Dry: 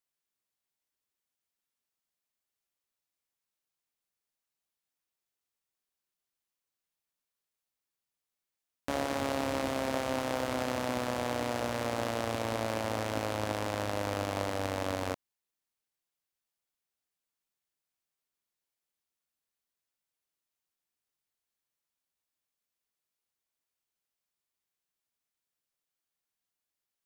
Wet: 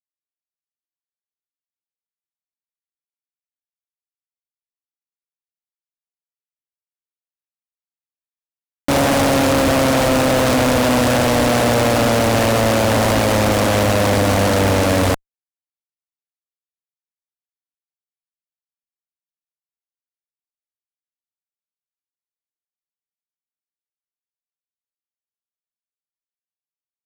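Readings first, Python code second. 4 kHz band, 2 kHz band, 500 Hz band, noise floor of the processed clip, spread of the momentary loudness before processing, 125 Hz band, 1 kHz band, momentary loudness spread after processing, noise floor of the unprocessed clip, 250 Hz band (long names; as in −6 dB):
+18.0 dB, +17.5 dB, +17.5 dB, below −85 dBFS, 2 LU, +20.5 dB, +16.0 dB, 1 LU, below −85 dBFS, +19.0 dB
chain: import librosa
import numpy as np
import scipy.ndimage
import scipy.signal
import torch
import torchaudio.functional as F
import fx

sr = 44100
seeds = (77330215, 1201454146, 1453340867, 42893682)

y = fx.cvsd(x, sr, bps=64000)
y = fx.fuzz(y, sr, gain_db=50.0, gate_db=-51.0)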